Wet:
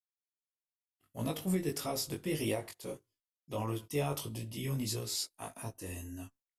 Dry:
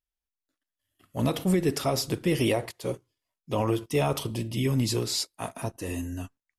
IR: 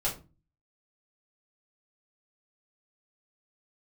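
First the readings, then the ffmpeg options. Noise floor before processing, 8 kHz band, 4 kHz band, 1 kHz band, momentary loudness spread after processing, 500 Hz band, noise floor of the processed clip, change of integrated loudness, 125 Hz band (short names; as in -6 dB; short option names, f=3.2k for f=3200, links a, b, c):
under -85 dBFS, -5.0 dB, -8.0 dB, -9.5 dB, 11 LU, -9.5 dB, under -85 dBFS, -9.0 dB, -9.0 dB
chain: -af "agate=range=-33dB:threshold=-56dB:ratio=3:detection=peak,flanger=delay=18.5:depth=2.8:speed=1.6,highshelf=f=8.2k:g=11,volume=-7dB"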